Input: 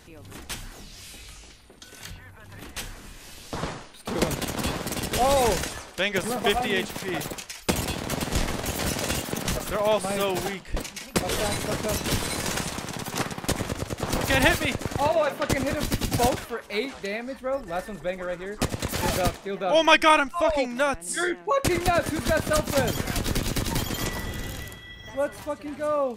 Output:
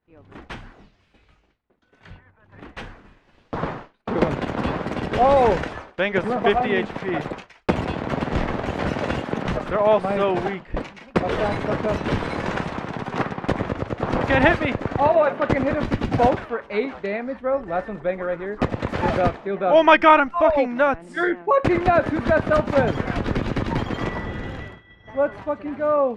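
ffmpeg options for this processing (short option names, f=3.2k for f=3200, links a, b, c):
-af "lowpass=1.8k,lowshelf=f=88:g=-7,agate=range=-33dB:threshold=-39dB:ratio=3:detection=peak,volume=6dB"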